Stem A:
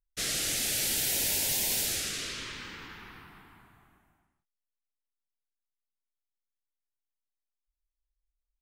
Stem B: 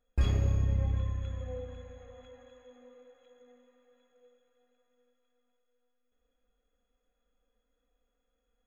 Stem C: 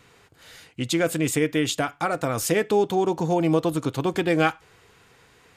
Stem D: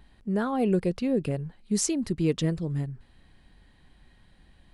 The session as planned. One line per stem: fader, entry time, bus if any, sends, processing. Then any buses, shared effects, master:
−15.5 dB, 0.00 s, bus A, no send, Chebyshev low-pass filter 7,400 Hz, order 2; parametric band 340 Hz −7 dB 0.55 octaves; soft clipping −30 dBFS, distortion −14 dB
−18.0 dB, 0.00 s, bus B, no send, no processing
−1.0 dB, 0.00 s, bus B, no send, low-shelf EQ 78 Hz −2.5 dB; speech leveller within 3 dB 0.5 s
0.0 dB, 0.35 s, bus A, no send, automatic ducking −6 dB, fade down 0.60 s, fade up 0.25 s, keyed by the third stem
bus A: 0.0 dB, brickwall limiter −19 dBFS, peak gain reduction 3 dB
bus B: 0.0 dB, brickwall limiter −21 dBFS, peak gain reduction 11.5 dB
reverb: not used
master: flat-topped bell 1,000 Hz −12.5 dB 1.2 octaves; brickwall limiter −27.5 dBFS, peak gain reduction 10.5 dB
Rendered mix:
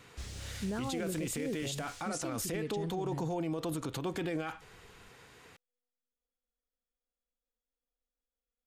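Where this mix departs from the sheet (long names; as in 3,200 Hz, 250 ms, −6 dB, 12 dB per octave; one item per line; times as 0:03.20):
stem C: missing speech leveller within 3 dB 0.5 s
master: missing flat-topped bell 1,000 Hz −12.5 dB 1.2 octaves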